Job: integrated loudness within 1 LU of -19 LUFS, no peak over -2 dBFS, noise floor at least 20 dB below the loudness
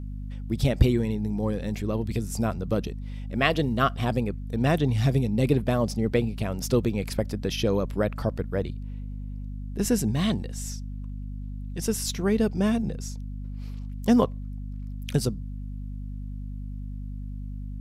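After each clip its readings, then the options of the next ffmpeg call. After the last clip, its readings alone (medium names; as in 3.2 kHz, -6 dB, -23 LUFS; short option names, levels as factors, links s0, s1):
hum 50 Hz; highest harmonic 250 Hz; hum level -32 dBFS; loudness -26.5 LUFS; peak level -6.5 dBFS; loudness target -19.0 LUFS
-> -af "bandreject=f=50:t=h:w=4,bandreject=f=100:t=h:w=4,bandreject=f=150:t=h:w=4,bandreject=f=200:t=h:w=4,bandreject=f=250:t=h:w=4"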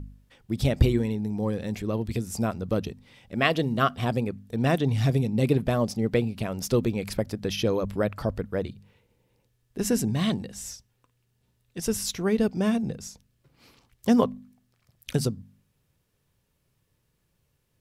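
hum not found; loudness -27.0 LUFS; peak level -7.0 dBFS; loudness target -19.0 LUFS
-> -af "volume=2.51,alimiter=limit=0.794:level=0:latency=1"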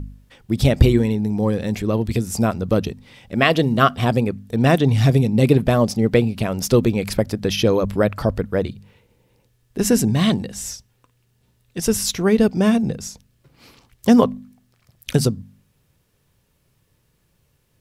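loudness -19.0 LUFS; peak level -2.0 dBFS; noise floor -65 dBFS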